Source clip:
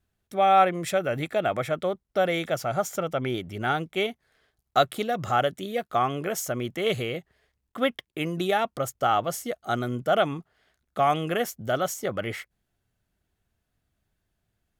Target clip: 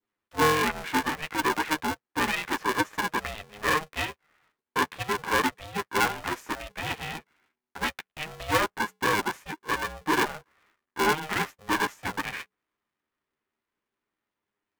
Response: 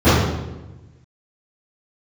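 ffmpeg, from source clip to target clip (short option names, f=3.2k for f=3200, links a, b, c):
-filter_complex "[0:a]acrossover=split=590 2700:gain=0.178 1 0.1[a][b][c];[a][b][c]amix=inputs=3:normalize=0,bandreject=f=60:t=h:w=6,bandreject=f=120:t=h:w=6,adynamicequalizer=threshold=0.0112:dfrequency=1400:dqfactor=0.77:tfrequency=1400:tqfactor=0.77:attack=5:release=100:ratio=0.375:range=4:mode=boostabove:tftype=bell,alimiter=limit=-13dB:level=0:latency=1:release=21,aeval=exprs='clip(val(0),-1,0.075)':c=same,flanger=delay=9.7:depth=3.4:regen=2:speed=0.34:shape=sinusoidal,aeval=exprs='val(0)*sgn(sin(2*PI*310*n/s))':c=same,volume=3dB"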